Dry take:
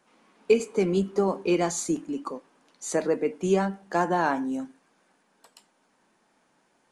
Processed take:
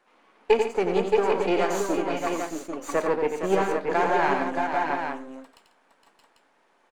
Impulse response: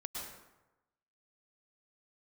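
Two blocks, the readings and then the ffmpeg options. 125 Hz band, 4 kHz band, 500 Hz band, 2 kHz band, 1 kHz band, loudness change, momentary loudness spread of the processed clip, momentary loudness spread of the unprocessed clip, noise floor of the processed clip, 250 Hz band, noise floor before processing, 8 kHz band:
−5.0 dB, +3.0 dB, +2.5 dB, +5.5 dB, +5.0 dB, +1.0 dB, 9 LU, 10 LU, −64 dBFS, −2.0 dB, −68 dBFS, −5.5 dB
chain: -filter_complex "[0:a]aeval=exprs='if(lt(val(0),0),0.251*val(0),val(0))':channel_layout=same,bass=frequency=250:gain=-14,treble=frequency=4000:gain=-11,asplit=2[link_01][link_02];[link_02]aecho=0:1:90|143|464|622|629|794:0.473|0.2|0.398|0.422|0.376|0.473[link_03];[link_01][link_03]amix=inputs=2:normalize=0,volume=5.5dB"

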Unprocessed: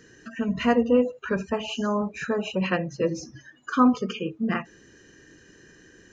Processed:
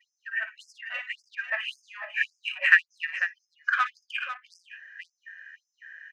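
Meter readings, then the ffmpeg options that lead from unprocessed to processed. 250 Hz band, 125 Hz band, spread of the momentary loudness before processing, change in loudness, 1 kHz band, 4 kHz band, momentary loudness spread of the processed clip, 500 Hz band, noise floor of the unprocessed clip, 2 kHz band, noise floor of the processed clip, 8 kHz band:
below −40 dB, below −40 dB, 10 LU, −2.0 dB, −6.0 dB, −0.5 dB, 25 LU, −24.0 dB, −54 dBFS, +10.0 dB, −83 dBFS, can't be measured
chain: -filter_complex "[0:a]adynamicsmooth=sensitivity=1.5:basefreq=2000,firequalizer=gain_entry='entry(190,0);entry(980,-18);entry(1700,15);entry(3700,-3)':delay=0.05:min_phase=1,agate=range=-33dB:threshold=-54dB:ratio=3:detection=peak,asplit=2[link_01][link_02];[link_02]aecho=0:1:57|496:0.282|0.299[link_03];[link_01][link_03]amix=inputs=2:normalize=0,afftfilt=real='re*gte(b*sr/1024,530*pow(5000/530,0.5+0.5*sin(2*PI*1.8*pts/sr)))':imag='im*gte(b*sr/1024,530*pow(5000/530,0.5+0.5*sin(2*PI*1.8*pts/sr)))':win_size=1024:overlap=0.75,volume=3.5dB"

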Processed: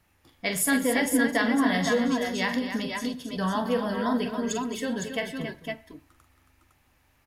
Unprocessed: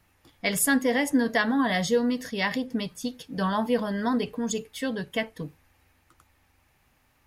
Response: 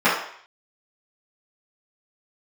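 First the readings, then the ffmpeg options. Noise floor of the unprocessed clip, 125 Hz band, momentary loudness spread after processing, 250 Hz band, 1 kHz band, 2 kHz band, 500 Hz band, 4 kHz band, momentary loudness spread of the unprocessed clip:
−66 dBFS, −0.5 dB, 10 LU, +0.5 dB, 0.0 dB, +0.5 dB, −0.5 dB, 0.0 dB, 10 LU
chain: -filter_complex "[0:a]aecho=1:1:43|120|217|274|507|510:0.398|0.112|0.15|0.376|0.376|0.447,asplit=2[link_01][link_02];[1:a]atrim=start_sample=2205,asetrate=52920,aresample=44100,adelay=70[link_03];[link_02][link_03]afir=irnorm=-1:irlink=0,volume=-41.5dB[link_04];[link_01][link_04]amix=inputs=2:normalize=0,volume=-2dB"

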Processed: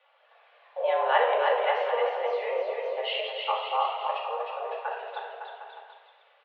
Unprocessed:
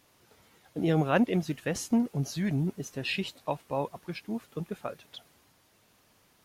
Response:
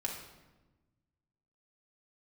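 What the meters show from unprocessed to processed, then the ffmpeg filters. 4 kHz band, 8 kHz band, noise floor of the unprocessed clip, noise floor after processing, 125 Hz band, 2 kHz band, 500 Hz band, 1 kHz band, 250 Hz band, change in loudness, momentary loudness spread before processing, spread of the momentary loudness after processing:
+6.0 dB, below −30 dB, −65 dBFS, −63 dBFS, below −40 dB, +5.5 dB, +7.0 dB, +11.5 dB, below −30 dB, +3.0 dB, 15 LU, 16 LU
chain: -filter_complex "[0:a]aecho=1:1:310|558|756.4|915.1|1042:0.631|0.398|0.251|0.158|0.1[link_01];[1:a]atrim=start_sample=2205[link_02];[link_01][link_02]afir=irnorm=-1:irlink=0,highpass=frequency=270:width_type=q:width=0.5412,highpass=frequency=270:width_type=q:width=1.307,lowpass=frequency=3100:width_type=q:width=0.5176,lowpass=frequency=3100:width_type=q:width=0.7071,lowpass=frequency=3100:width_type=q:width=1.932,afreqshift=250,volume=1.5dB"

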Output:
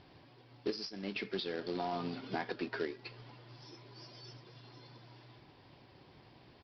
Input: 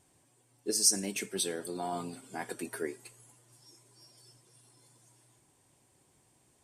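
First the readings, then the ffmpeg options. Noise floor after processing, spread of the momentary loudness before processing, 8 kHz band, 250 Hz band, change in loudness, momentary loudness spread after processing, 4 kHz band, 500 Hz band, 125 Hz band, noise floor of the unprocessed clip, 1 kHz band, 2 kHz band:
−61 dBFS, 17 LU, below −30 dB, −1.0 dB, −8.0 dB, 22 LU, −7.0 dB, −1.0 dB, +1.0 dB, −69 dBFS, −0.5 dB, 0.0 dB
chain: -af "acompressor=threshold=-45dB:ratio=6,aresample=11025,acrusher=bits=3:mode=log:mix=0:aa=0.000001,aresample=44100,volume=10.5dB"

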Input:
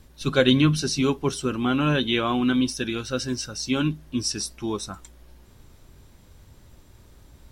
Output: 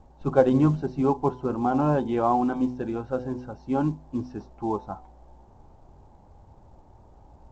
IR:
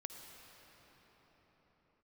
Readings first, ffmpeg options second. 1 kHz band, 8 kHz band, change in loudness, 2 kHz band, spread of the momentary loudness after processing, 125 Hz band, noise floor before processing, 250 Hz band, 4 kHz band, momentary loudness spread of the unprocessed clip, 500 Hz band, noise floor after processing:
+4.5 dB, below −25 dB, −1.5 dB, −12.0 dB, 12 LU, −2.0 dB, −52 dBFS, −2.0 dB, below −25 dB, 10 LU, +1.5 dB, −54 dBFS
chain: -af "lowpass=frequency=820:width_type=q:width=5.3,bandreject=frequency=125.4:width_type=h:width=4,bandreject=frequency=250.8:width_type=h:width=4,bandreject=frequency=376.2:width_type=h:width=4,bandreject=frequency=501.6:width_type=h:width=4,bandreject=frequency=627:width_type=h:width=4,bandreject=frequency=752.4:width_type=h:width=4,bandreject=frequency=877.8:width_type=h:width=4,bandreject=frequency=1003.2:width_type=h:width=4,volume=-2dB" -ar 16000 -c:a pcm_mulaw

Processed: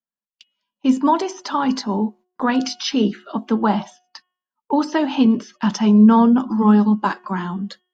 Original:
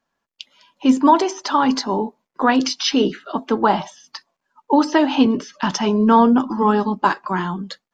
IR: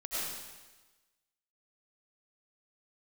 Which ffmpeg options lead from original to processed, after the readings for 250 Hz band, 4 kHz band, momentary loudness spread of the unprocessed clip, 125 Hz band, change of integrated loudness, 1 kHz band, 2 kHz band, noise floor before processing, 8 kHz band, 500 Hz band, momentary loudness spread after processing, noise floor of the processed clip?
+2.0 dB, −4.0 dB, 10 LU, +5.0 dB, 0.0 dB, −4.0 dB, −4.0 dB, −80 dBFS, can't be measured, −4.0 dB, 12 LU, below −85 dBFS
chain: -af "equalizer=frequency=210:width_type=o:width=0.27:gain=12,agate=range=-22dB:threshold=-36dB:ratio=16:detection=peak,bandreject=frequency=363.4:width_type=h:width=4,bandreject=frequency=726.8:width_type=h:width=4,bandreject=frequency=1090.2:width_type=h:width=4,bandreject=frequency=1453.6:width_type=h:width=4,bandreject=frequency=1817:width_type=h:width=4,bandreject=frequency=2180.4:width_type=h:width=4,bandreject=frequency=2543.8:width_type=h:width=4,bandreject=frequency=2907.2:width_type=h:width=4,bandreject=frequency=3270.6:width_type=h:width=4,volume=-4dB"

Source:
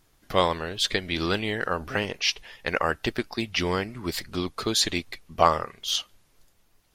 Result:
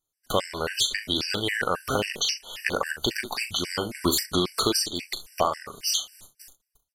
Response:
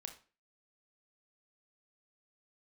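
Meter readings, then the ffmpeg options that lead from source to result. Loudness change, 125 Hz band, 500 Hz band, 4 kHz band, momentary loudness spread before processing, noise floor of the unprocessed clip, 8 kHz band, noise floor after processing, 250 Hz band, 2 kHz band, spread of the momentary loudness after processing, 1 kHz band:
0.0 dB, −2.5 dB, −1.5 dB, +1.5 dB, 8 LU, −64 dBFS, +5.0 dB, −84 dBFS, −0.5 dB, −0.5 dB, 6 LU, −3.0 dB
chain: -af "agate=range=-30dB:threshold=-56dB:ratio=16:detection=peak,dynaudnorm=framelen=180:gausssize=7:maxgain=11.5dB,bass=frequency=250:gain=-4,treble=frequency=4000:gain=13,bandreject=frequency=72.79:width_type=h:width=4,bandreject=frequency=145.58:width_type=h:width=4,bandreject=frequency=218.37:width_type=h:width=4,acompressor=threshold=-25dB:ratio=12,asoftclip=type=tanh:threshold=-12dB,aecho=1:1:39|66:0.316|0.168,afftfilt=real='re*gt(sin(2*PI*3.7*pts/sr)*(1-2*mod(floor(b*sr/1024/1500),2)),0)':imag='im*gt(sin(2*PI*3.7*pts/sr)*(1-2*mod(floor(b*sr/1024/1500),2)),0)':win_size=1024:overlap=0.75,volume=6.5dB"

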